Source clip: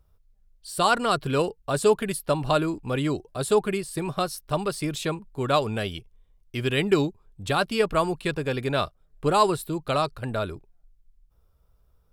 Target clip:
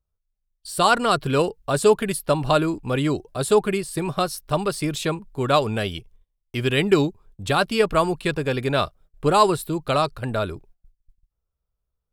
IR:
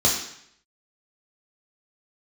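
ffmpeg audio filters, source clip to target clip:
-af "agate=range=0.0891:threshold=0.00251:ratio=16:detection=peak,volume=1.5"

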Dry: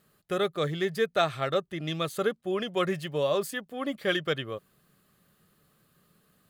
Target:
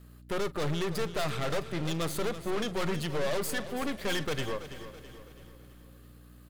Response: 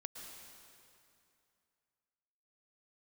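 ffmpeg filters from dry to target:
-filter_complex "[0:a]aeval=exprs='val(0)+0.002*(sin(2*PI*60*n/s)+sin(2*PI*2*60*n/s)/2+sin(2*PI*3*60*n/s)/3+sin(2*PI*4*60*n/s)/4+sin(2*PI*5*60*n/s)/5)':c=same,aeval=exprs='(tanh(70.8*val(0)+0.7)-tanh(0.7))/70.8':c=same,aecho=1:1:330|660|990|1320|1650:0.237|0.111|0.0524|0.0246|0.0116,asplit=2[s0][s1];[1:a]atrim=start_sample=2205,asetrate=26019,aresample=44100,adelay=41[s2];[s1][s2]afir=irnorm=-1:irlink=0,volume=0.158[s3];[s0][s3]amix=inputs=2:normalize=0,volume=2.37"

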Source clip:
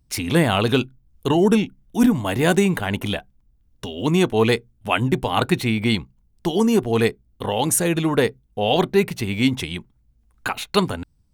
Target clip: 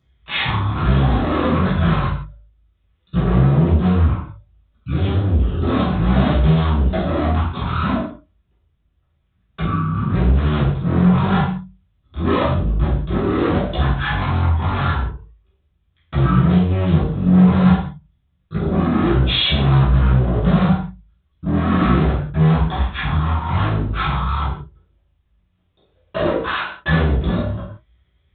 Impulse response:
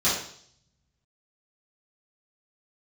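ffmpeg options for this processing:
-filter_complex "[0:a]highpass=45,asoftclip=type=tanh:threshold=0.112,flanger=delay=5.5:depth=2.5:regen=-37:speed=1.4:shape=sinusoidal,asetrate=17640,aresample=44100,aresample=8000,asoftclip=type=hard:threshold=0.0335,aresample=44100[s0];[1:a]atrim=start_sample=2205,afade=t=out:st=0.25:d=0.01,atrim=end_sample=11466[s1];[s0][s1]afir=irnorm=-1:irlink=0"

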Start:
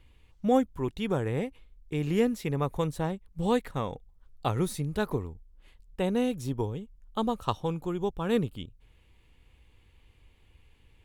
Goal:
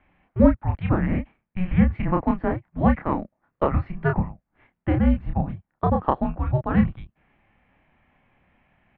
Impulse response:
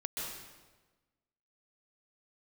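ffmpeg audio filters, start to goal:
-filter_complex "[0:a]asplit=2[s0][s1];[s1]adelay=36,volume=0.631[s2];[s0][s2]amix=inputs=2:normalize=0,highpass=f=250:t=q:w=0.5412,highpass=f=250:t=q:w=1.307,lowpass=f=2000:t=q:w=0.5176,lowpass=f=2000:t=q:w=0.7071,lowpass=f=2000:t=q:w=1.932,afreqshift=-300,asetrate=54243,aresample=44100,volume=2.66"

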